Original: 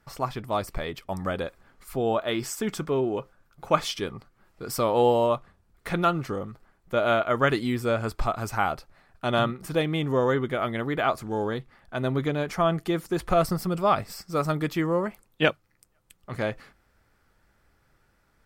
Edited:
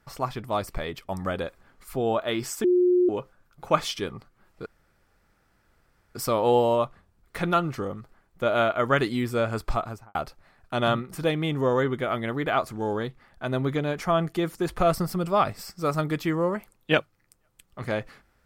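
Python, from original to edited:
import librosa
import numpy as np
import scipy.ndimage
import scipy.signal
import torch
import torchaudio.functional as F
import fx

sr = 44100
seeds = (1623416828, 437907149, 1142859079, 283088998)

y = fx.studio_fade_out(x, sr, start_s=8.25, length_s=0.41)
y = fx.edit(y, sr, fx.bleep(start_s=2.64, length_s=0.45, hz=359.0, db=-16.5),
    fx.insert_room_tone(at_s=4.66, length_s=1.49), tone=tone)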